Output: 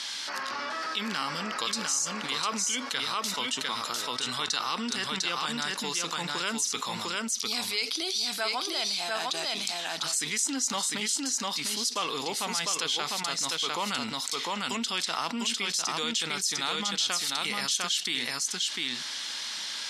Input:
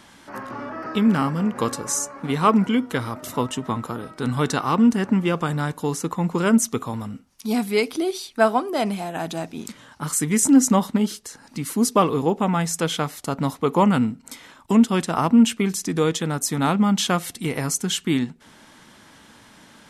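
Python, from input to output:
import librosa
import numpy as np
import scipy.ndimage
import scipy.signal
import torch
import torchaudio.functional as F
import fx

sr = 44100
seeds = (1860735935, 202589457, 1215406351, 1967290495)

y = fx.bandpass_q(x, sr, hz=4500.0, q=2.1)
y = y + 10.0 ** (-4.0 / 20.0) * np.pad(y, (int(701 * sr / 1000.0), 0))[:len(y)]
y = fx.env_flatten(y, sr, amount_pct=70)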